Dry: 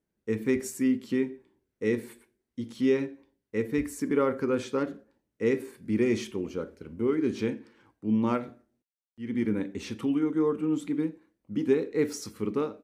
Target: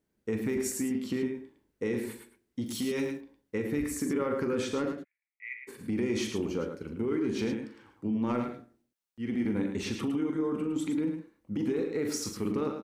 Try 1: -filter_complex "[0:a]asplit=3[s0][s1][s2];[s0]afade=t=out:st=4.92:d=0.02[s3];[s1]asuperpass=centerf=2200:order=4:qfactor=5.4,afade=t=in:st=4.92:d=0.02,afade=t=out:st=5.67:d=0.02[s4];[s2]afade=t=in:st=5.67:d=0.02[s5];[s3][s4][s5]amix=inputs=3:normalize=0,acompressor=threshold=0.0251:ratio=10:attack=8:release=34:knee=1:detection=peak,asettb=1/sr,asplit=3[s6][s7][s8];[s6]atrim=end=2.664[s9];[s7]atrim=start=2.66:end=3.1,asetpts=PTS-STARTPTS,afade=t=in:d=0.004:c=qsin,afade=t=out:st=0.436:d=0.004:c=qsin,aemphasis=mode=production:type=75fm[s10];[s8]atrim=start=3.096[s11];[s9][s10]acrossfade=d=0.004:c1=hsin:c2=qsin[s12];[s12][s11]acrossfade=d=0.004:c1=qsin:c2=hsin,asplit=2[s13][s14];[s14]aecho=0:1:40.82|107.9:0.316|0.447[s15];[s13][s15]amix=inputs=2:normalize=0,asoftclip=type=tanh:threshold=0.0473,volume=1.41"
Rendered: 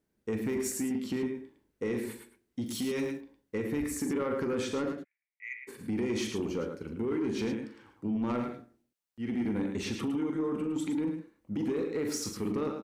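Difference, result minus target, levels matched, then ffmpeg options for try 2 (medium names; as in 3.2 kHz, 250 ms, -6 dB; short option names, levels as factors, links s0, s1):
saturation: distortion +14 dB
-filter_complex "[0:a]asplit=3[s0][s1][s2];[s0]afade=t=out:st=4.92:d=0.02[s3];[s1]asuperpass=centerf=2200:order=4:qfactor=5.4,afade=t=in:st=4.92:d=0.02,afade=t=out:st=5.67:d=0.02[s4];[s2]afade=t=in:st=5.67:d=0.02[s5];[s3][s4][s5]amix=inputs=3:normalize=0,acompressor=threshold=0.0251:ratio=10:attack=8:release=34:knee=1:detection=peak,asettb=1/sr,asplit=3[s6][s7][s8];[s6]atrim=end=2.664[s9];[s7]atrim=start=2.66:end=3.1,asetpts=PTS-STARTPTS,afade=t=in:d=0.004:c=qsin,afade=t=out:st=0.436:d=0.004:c=qsin,aemphasis=mode=production:type=75fm[s10];[s8]atrim=start=3.096[s11];[s9][s10]acrossfade=d=0.004:c1=hsin:c2=qsin[s12];[s12][s11]acrossfade=d=0.004:c1=qsin:c2=hsin,asplit=2[s13][s14];[s14]aecho=0:1:40.82|107.9:0.316|0.447[s15];[s13][s15]amix=inputs=2:normalize=0,asoftclip=type=tanh:threshold=0.126,volume=1.41"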